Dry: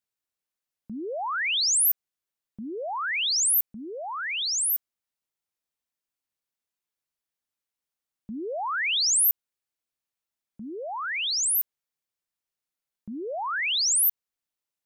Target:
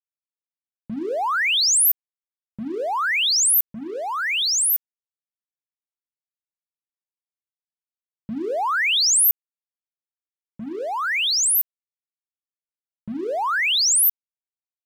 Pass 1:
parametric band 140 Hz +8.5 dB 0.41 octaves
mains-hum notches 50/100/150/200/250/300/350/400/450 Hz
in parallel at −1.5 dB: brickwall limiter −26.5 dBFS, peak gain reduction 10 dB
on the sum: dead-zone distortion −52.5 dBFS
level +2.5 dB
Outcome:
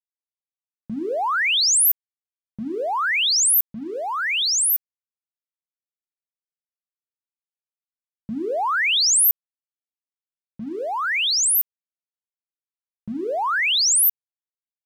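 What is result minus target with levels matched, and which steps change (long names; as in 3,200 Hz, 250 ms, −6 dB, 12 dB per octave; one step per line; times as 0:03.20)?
dead-zone distortion: distortion −6 dB
change: dead-zone distortion −46.5 dBFS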